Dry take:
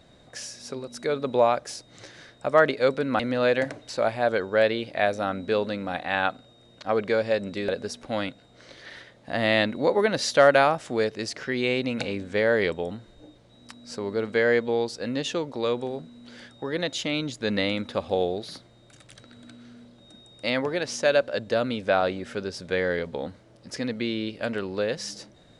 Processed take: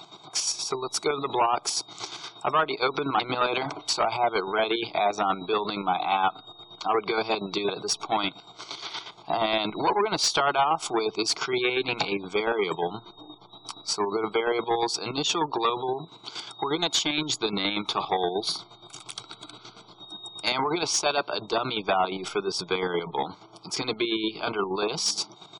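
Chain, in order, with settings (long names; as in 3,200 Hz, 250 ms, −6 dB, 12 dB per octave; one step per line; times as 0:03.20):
square-wave tremolo 8.5 Hz, depth 60%, duty 40%
in parallel at −10 dB: slack as between gear wheels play −21 dBFS
on the sum: phaser with its sweep stopped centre 360 Hz, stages 8
comb filter 0.9 ms, depth 38%
downward compressor 6 to 1, threshold −30 dBFS, peak gain reduction 12 dB
mid-hump overdrive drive 25 dB, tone 2,100 Hz, clips at −12.5 dBFS
gate on every frequency bin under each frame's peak −30 dB strong
spectral tilt +2 dB per octave
level +1.5 dB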